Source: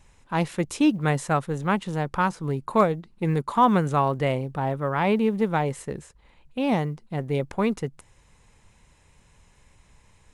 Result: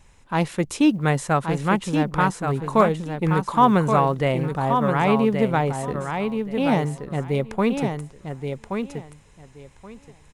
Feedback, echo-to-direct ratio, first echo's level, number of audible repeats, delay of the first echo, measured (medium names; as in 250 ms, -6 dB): 18%, -6.0 dB, -6.0 dB, 2, 1126 ms